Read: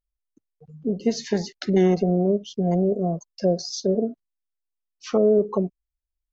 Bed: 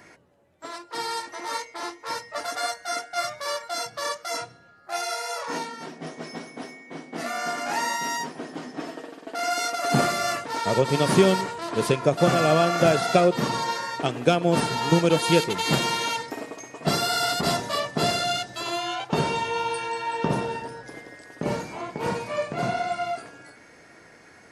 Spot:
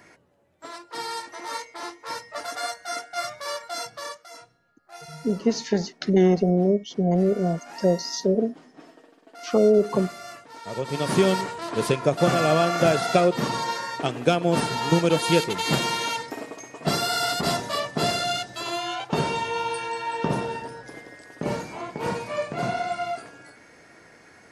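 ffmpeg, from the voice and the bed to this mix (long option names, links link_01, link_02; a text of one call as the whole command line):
ffmpeg -i stem1.wav -i stem2.wav -filter_complex "[0:a]adelay=4400,volume=0.5dB[link_01];[1:a]volume=11.5dB,afade=type=out:start_time=3.84:duration=0.45:silence=0.251189,afade=type=in:start_time=10.61:duration=0.76:silence=0.211349[link_02];[link_01][link_02]amix=inputs=2:normalize=0" out.wav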